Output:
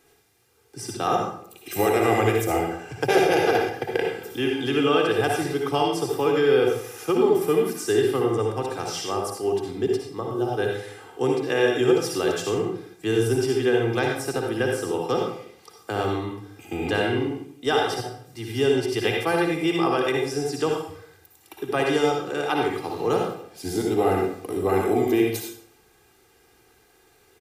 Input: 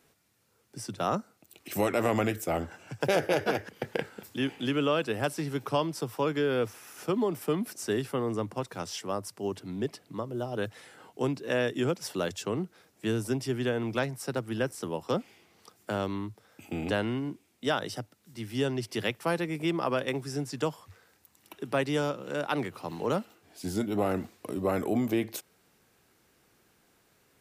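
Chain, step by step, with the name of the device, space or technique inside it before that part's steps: microphone above a desk (comb 2.5 ms, depth 64%; reverb RT60 0.60 s, pre-delay 53 ms, DRR 0 dB); gain +3 dB

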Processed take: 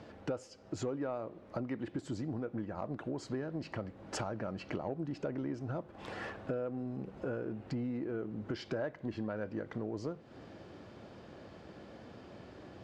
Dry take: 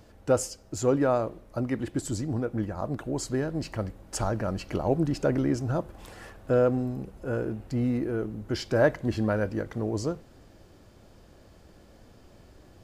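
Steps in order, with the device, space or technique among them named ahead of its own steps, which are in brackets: AM radio (BPF 130–3600 Hz; compressor 6:1, threshold -40 dBFS, peak gain reduction 22 dB; soft clip -28.5 dBFS, distortion -25 dB); gain +5 dB

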